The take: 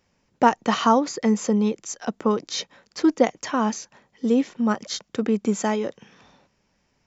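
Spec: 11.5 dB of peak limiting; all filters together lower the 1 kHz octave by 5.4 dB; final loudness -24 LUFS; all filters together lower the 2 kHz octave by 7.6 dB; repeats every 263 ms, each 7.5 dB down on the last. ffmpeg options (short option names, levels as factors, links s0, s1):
-af "equalizer=f=1000:t=o:g=-5,equalizer=f=2000:t=o:g=-8,alimiter=limit=0.133:level=0:latency=1,aecho=1:1:263|526|789|1052|1315:0.422|0.177|0.0744|0.0312|0.0131,volume=1.58"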